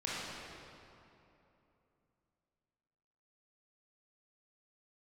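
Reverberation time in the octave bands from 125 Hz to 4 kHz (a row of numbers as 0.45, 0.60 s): 3.5, 3.4, 3.1, 2.9, 2.3, 1.9 s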